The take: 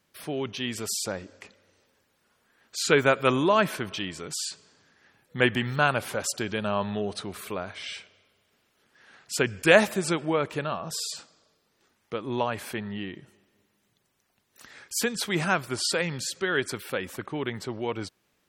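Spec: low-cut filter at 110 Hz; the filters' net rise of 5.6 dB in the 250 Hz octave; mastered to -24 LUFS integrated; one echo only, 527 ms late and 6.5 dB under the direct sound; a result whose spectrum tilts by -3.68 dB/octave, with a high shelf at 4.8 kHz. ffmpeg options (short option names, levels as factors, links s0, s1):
-af "highpass=110,equalizer=f=250:t=o:g=7.5,highshelf=f=4800:g=5,aecho=1:1:527:0.473,volume=1.06"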